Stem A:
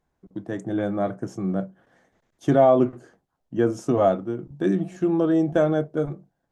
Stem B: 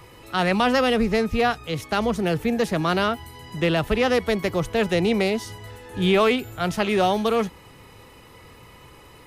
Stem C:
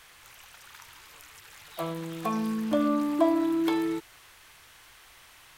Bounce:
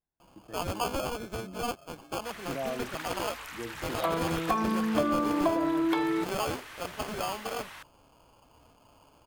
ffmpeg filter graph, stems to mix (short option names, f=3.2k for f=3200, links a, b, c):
-filter_complex "[0:a]volume=-19dB[a];[1:a]bandpass=f=1.9k:t=q:w=0.72:csg=0,acrusher=samples=23:mix=1:aa=0.000001,adelay=200,volume=-7dB[b];[2:a]equalizer=f=1.3k:w=0.43:g=9,acompressor=threshold=-26dB:ratio=6,adelay=2250,volume=1.5dB[c];[a][b][c]amix=inputs=3:normalize=0"